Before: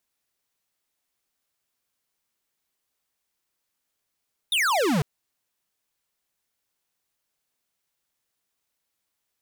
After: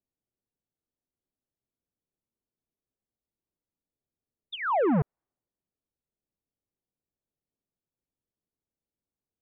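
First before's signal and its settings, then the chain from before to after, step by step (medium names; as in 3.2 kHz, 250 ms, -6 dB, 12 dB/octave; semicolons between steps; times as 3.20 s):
laser zap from 3.8 kHz, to 130 Hz, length 0.50 s square, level -22 dB
level-controlled noise filter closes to 390 Hz, open at -24 dBFS; low-pass 2.5 kHz 24 dB/octave; low-pass that closes with the level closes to 1.1 kHz, closed at -30 dBFS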